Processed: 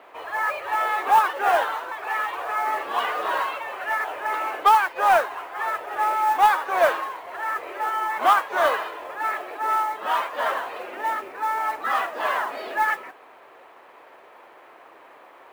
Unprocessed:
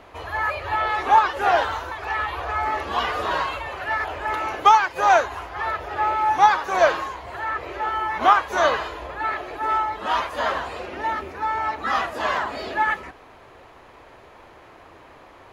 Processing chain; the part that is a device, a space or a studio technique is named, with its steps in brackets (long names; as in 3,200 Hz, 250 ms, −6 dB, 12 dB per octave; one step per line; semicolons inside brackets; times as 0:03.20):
carbon microphone (band-pass filter 420–3,000 Hz; soft clipping −7.5 dBFS, distortion −20 dB; noise that follows the level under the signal 24 dB)